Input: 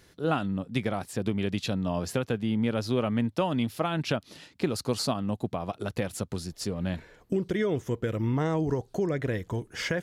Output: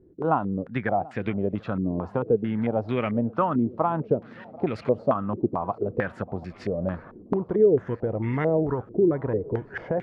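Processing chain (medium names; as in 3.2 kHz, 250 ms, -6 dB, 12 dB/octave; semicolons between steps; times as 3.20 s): shuffle delay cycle 983 ms, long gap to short 3:1, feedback 66%, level -23 dB; step-sequenced low-pass 4.5 Hz 350–2100 Hz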